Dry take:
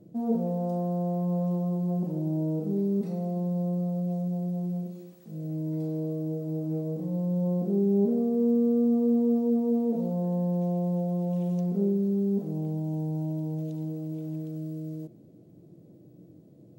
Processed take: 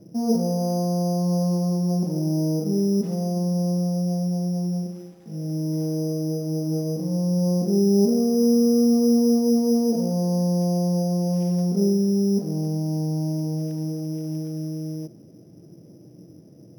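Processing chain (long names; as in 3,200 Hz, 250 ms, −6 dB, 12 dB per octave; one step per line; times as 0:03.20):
high-shelf EQ 7,900 Hz −11 dB
bad sample-rate conversion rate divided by 8×, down none, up hold
level +5.5 dB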